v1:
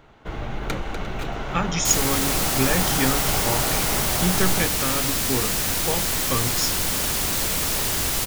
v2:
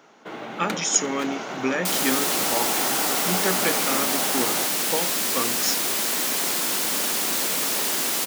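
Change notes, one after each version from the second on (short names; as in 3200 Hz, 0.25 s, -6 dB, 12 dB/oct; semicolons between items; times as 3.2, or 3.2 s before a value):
speech: entry -0.95 s; master: add HPF 210 Hz 24 dB/oct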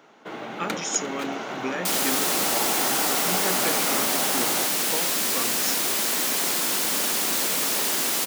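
speech -5.5 dB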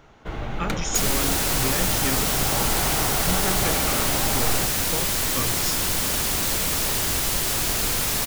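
second sound: entry -0.90 s; master: remove HPF 210 Hz 24 dB/oct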